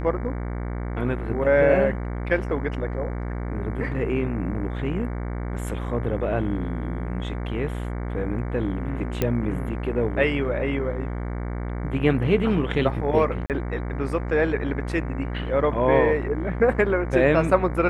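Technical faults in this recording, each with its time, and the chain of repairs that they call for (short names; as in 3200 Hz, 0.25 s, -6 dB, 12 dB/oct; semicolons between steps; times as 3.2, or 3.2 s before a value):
buzz 60 Hz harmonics 38 -29 dBFS
9.22 pop -9 dBFS
13.46–13.5 gap 38 ms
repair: de-click; de-hum 60 Hz, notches 38; interpolate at 13.46, 38 ms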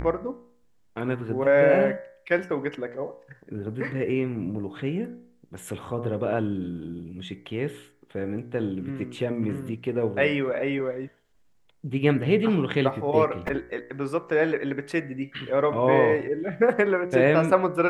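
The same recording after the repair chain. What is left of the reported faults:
none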